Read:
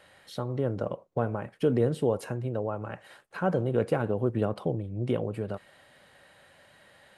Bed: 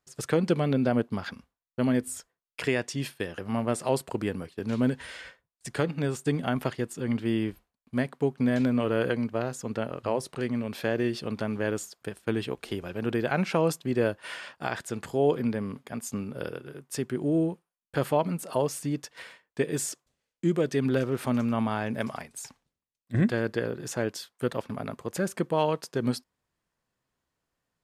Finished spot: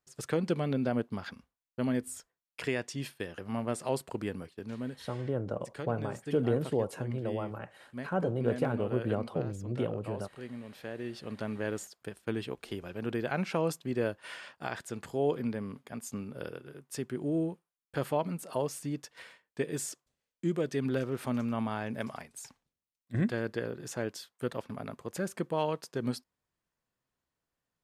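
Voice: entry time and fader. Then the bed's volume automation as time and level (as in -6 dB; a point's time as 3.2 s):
4.70 s, -4.0 dB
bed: 4.47 s -5.5 dB
4.84 s -13 dB
10.95 s -13 dB
11.45 s -5.5 dB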